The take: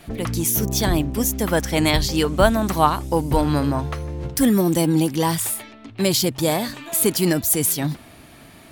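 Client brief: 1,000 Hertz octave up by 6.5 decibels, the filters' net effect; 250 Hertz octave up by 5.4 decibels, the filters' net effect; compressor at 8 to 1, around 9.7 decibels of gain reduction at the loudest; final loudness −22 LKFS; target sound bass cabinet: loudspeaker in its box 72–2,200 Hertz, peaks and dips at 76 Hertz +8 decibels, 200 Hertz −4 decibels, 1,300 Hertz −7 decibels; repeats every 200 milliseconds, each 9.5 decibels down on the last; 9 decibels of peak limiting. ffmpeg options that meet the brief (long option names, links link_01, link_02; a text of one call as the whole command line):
ffmpeg -i in.wav -af "equalizer=frequency=250:width_type=o:gain=8,equalizer=frequency=1000:width_type=o:gain=9,acompressor=threshold=-15dB:ratio=8,alimiter=limit=-14dB:level=0:latency=1,highpass=frequency=72:width=0.5412,highpass=frequency=72:width=1.3066,equalizer=frequency=76:width_type=q:width=4:gain=8,equalizer=frequency=200:width_type=q:width=4:gain=-4,equalizer=frequency=1300:width_type=q:width=4:gain=-7,lowpass=frequency=2200:width=0.5412,lowpass=frequency=2200:width=1.3066,aecho=1:1:200|400|600|800:0.335|0.111|0.0365|0.012,volume=3dB" out.wav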